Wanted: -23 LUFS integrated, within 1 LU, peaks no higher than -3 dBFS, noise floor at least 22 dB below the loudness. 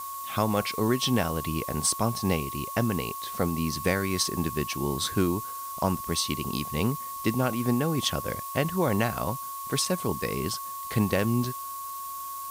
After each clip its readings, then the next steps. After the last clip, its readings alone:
steady tone 1.1 kHz; tone level -35 dBFS; noise floor -37 dBFS; noise floor target -50 dBFS; loudness -28.0 LUFS; peak level -12.0 dBFS; loudness target -23.0 LUFS
-> band-stop 1.1 kHz, Q 30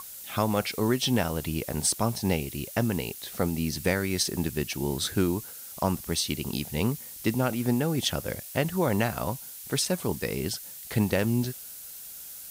steady tone not found; noise floor -43 dBFS; noise floor target -51 dBFS
-> noise reduction 8 dB, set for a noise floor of -43 dBFS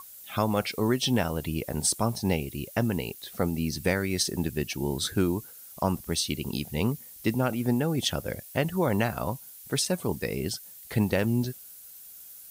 noise floor -47 dBFS; noise floor target -51 dBFS
-> noise reduction 6 dB, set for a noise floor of -47 dBFS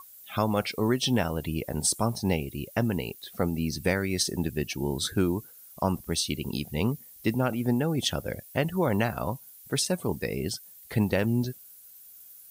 noise floor -51 dBFS; loudness -28.5 LUFS; peak level -12.5 dBFS; loudness target -23.0 LUFS
-> trim +5.5 dB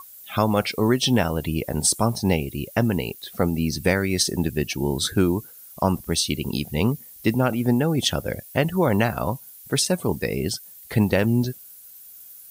loudness -23.0 LUFS; peak level -7.0 dBFS; noise floor -45 dBFS

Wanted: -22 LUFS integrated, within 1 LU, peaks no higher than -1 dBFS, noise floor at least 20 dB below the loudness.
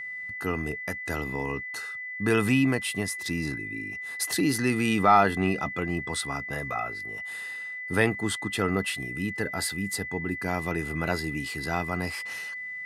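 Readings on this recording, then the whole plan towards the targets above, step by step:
steady tone 2 kHz; tone level -34 dBFS; loudness -28.0 LUFS; peak level -8.0 dBFS; loudness target -22.0 LUFS
-> band-stop 2 kHz, Q 30; trim +6 dB

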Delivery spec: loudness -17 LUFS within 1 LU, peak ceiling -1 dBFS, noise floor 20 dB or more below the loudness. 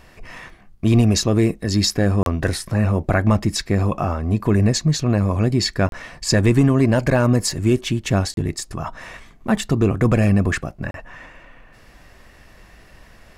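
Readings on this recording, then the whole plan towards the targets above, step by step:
dropouts 4; longest dropout 32 ms; loudness -19.0 LUFS; peak level -6.5 dBFS; loudness target -17.0 LUFS
-> interpolate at 2.23/5.89/8.34/10.91 s, 32 ms; trim +2 dB

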